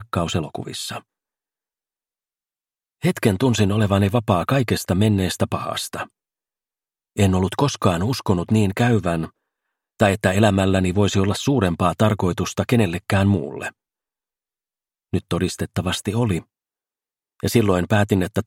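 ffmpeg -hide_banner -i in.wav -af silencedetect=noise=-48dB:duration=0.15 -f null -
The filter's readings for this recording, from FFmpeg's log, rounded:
silence_start: 1.02
silence_end: 3.02 | silence_duration: 2.00
silence_start: 6.10
silence_end: 7.16 | silence_duration: 1.06
silence_start: 9.30
silence_end: 10.00 | silence_duration: 0.69
silence_start: 13.71
silence_end: 15.13 | silence_duration: 1.41
silence_start: 16.43
silence_end: 17.40 | silence_duration: 0.97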